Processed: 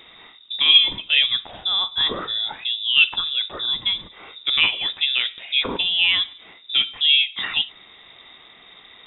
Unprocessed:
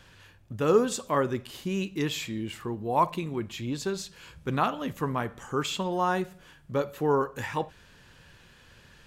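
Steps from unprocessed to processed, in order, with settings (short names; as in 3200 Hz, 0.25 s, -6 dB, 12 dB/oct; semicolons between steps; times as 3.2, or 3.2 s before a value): inverted band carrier 3700 Hz; gain +7.5 dB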